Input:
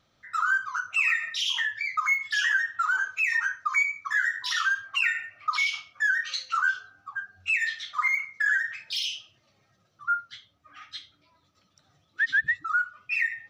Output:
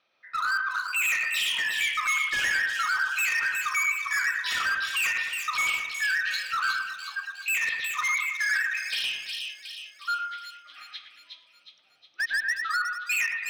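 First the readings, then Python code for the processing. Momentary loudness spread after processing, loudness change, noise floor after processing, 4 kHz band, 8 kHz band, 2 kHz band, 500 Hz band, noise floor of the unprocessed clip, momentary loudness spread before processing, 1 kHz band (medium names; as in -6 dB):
11 LU, 0.0 dB, -61 dBFS, +1.5 dB, +7.0 dB, -0.5 dB, no reading, -68 dBFS, 9 LU, -0.5 dB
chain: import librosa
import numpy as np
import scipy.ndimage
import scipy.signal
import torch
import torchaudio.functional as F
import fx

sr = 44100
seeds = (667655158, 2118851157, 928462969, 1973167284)

p1 = scipy.signal.sosfilt(scipy.signal.butter(2, 430.0, 'highpass', fs=sr, output='sos'), x)
p2 = fx.peak_eq(p1, sr, hz=2500.0, db=11.5, octaves=0.22)
p3 = np.sign(p2) * np.maximum(np.abs(p2) - 10.0 ** (-37.0 / 20.0), 0.0)
p4 = p2 + (p3 * librosa.db_to_amplitude(-3.0))
p5 = scipy.signal.savgol_filter(p4, 15, 4, mode='constant')
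p6 = np.clip(p5, -10.0 ** (-21.0 / 20.0), 10.0 ** (-21.0 / 20.0))
p7 = p6 + fx.echo_split(p6, sr, split_hz=2500.0, low_ms=109, high_ms=363, feedback_pct=52, wet_db=-4.0, dry=0)
y = p7 * librosa.db_to_amplitude(-3.5)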